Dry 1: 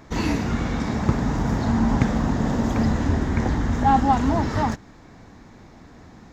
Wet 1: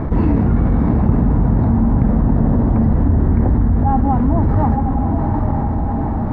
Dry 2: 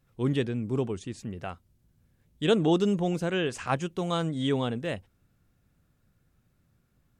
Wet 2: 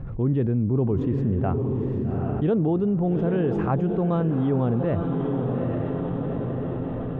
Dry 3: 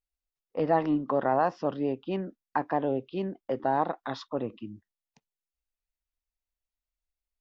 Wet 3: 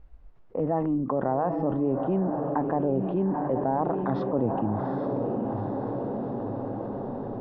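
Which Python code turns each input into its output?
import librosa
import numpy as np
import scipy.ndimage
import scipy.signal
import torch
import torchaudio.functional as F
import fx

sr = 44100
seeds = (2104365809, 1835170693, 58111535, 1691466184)

p1 = fx.rider(x, sr, range_db=5, speed_s=0.5)
p2 = scipy.signal.sosfilt(scipy.signal.butter(2, 1000.0, 'lowpass', fs=sr, output='sos'), p1)
p3 = fx.low_shelf(p2, sr, hz=170.0, db=9.5)
p4 = p3 + fx.echo_diffused(p3, sr, ms=822, feedback_pct=43, wet_db=-9.5, dry=0)
p5 = fx.env_flatten(p4, sr, amount_pct=70)
y = p5 * librosa.db_to_amplitude(-3.0)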